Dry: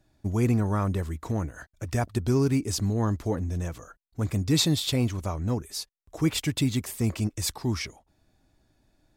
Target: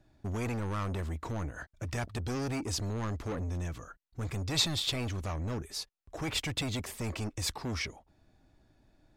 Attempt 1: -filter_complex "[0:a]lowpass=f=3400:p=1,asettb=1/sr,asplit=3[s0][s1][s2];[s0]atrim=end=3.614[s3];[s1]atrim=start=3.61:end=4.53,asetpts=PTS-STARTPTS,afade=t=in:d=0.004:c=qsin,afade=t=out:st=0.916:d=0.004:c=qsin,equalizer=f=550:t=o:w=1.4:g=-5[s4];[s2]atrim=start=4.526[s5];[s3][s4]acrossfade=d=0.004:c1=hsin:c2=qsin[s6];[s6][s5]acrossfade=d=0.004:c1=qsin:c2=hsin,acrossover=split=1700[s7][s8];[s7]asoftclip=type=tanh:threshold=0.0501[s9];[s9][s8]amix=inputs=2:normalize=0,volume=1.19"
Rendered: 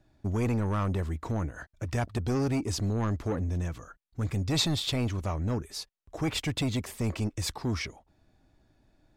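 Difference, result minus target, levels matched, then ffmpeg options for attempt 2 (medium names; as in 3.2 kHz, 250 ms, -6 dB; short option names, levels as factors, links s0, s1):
saturation: distortion -5 dB
-filter_complex "[0:a]lowpass=f=3400:p=1,asettb=1/sr,asplit=3[s0][s1][s2];[s0]atrim=end=3.614[s3];[s1]atrim=start=3.61:end=4.53,asetpts=PTS-STARTPTS,afade=t=in:d=0.004:c=qsin,afade=t=out:st=0.916:d=0.004:c=qsin,equalizer=f=550:t=o:w=1.4:g=-5[s4];[s2]atrim=start=4.526[s5];[s3][s4]acrossfade=d=0.004:c1=hsin:c2=qsin[s6];[s6][s5]acrossfade=d=0.004:c1=qsin:c2=hsin,acrossover=split=1700[s7][s8];[s7]asoftclip=type=tanh:threshold=0.02[s9];[s9][s8]amix=inputs=2:normalize=0,volume=1.19"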